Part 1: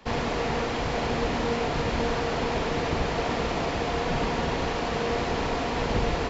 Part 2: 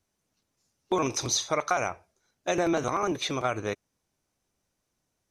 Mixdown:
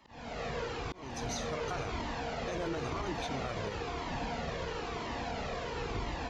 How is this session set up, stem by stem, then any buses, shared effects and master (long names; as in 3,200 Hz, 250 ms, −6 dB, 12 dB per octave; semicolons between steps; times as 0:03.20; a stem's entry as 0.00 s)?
−5.0 dB, 0.00 s, no send, high-pass filter 52 Hz 6 dB per octave; flanger whose copies keep moving one way falling 0.99 Hz
−13.0 dB, 0.00 s, no send, low-shelf EQ 250 Hz +10.5 dB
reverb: not used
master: volume swells 373 ms; brickwall limiter −26.5 dBFS, peak gain reduction 5 dB